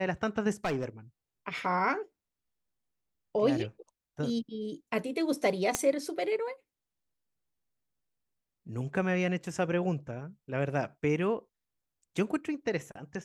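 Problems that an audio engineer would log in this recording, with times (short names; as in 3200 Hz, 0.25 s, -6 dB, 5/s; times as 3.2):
0.65–0.85 clipped -26 dBFS
5.75 pop -11 dBFS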